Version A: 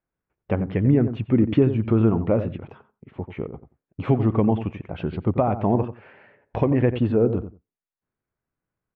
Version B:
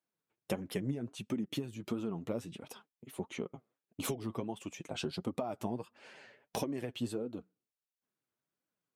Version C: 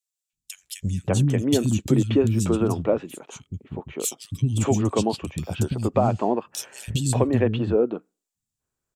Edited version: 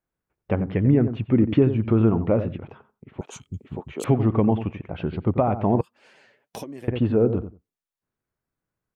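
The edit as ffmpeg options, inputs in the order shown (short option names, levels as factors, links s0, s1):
-filter_complex "[0:a]asplit=3[s0][s1][s2];[s0]atrim=end=3.212[s3];[2:a]atrim=start=3.208:end=4.042[s4];[s1]atrim=start=4.038:end=5.812[s5];[1:a]atrim=start=5.808:end=6.882[s6];[s2]atrim=start=6.878[s7];[s3][s4]acrossfade=d=0.004:c1=hsin:c2=hsin[s8];[s8][s5]acrossfade=d=0.004:c1=hsin:c2=hsin[s9];[s9][s6]acrossfade=d=0.004:c1=hsin:c2=hsin[s10];[s10][s7]acrossfade=d=0.004:c1=hsin:c2=hsin"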